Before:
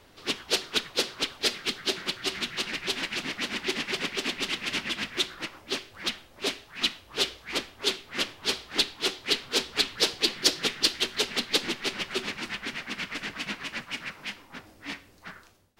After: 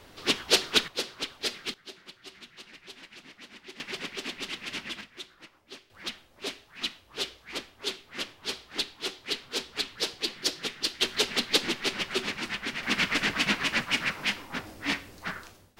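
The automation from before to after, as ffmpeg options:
ffmpeg -i in.wav -af "asetnsamples=nb_out_samples=441:pad=0,asendcmd='0.88 volume volume -5dB;1.74 volume volume -17dB;3.8 volume volume -6dB;5.01 volume volume -15dB;5.9 volume volume -6dB;11.01 volume volume 1dB;12.83 volume volume 8dB',volume=4dB" out.wav

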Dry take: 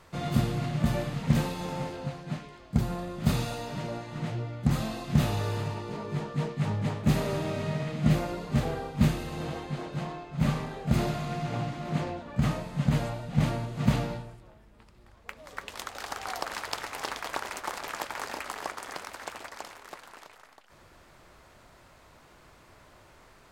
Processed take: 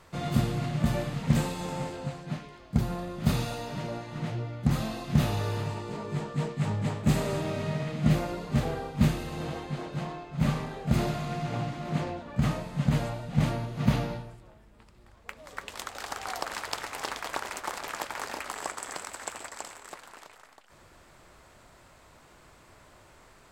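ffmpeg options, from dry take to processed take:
ffmpeg -i in.wav -af "asetnsamples=nb_out_samples=441:pad=0,asendcmd='1.36 equalizer g 8.5;2.26 equalizer g -1.5;5.68 equalizer g 7;7.41 equalizer g 0.5;13.53 equalizer g -6;14.3 equalizer g 3.5;18.54 equalizer g 14.5;19.93 equalizer g 6',equalizer=frequency=7800:width_type=o:width=0.26:gain=2" out.wav

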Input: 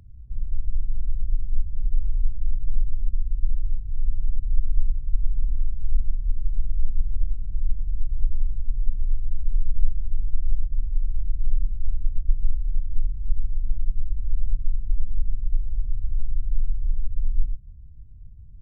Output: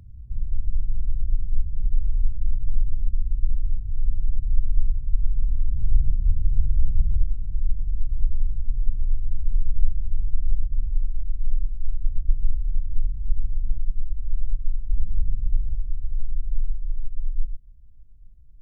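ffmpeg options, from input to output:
ffmpeg -i in.wav -af "asetnsamples=nb_out_samples=441:pad=0,asendcmd='5.68 equalizer g 12.5;7.23 equalizer g 3;11.05 equalizer g -6;12.02 equalizer g 1.5;13.78 equalizer g -5.5;14.93 equalizer g 5.5;15.75 equalizer g -6;16.77 equalizer g -14',equalizer=frequency=110:width_type=o:width=2.6:gain=4" out.wav

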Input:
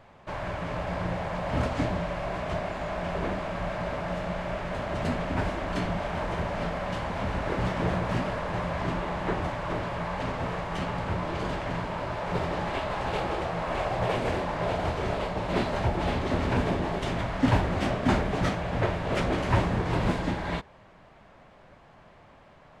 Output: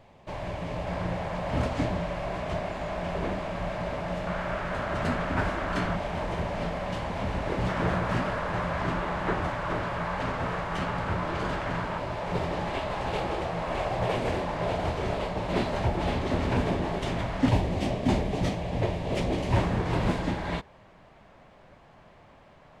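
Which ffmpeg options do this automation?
ffmpeg -i in.wav -af "asetnsamples=nb_out_samples=441:pad=0,asendcmd='0.86 equalizer g -3;4.27 equalizer g 6;5.96 equalizer g -3.5;7.69 equalizer g 4.5;11.98 equalizer g -3;17.49 equalizer g -13.5;19.56 equalizer g -2',equalizer=frequency=1400:width_type=o:width=0.75:gain=-9" out.wav

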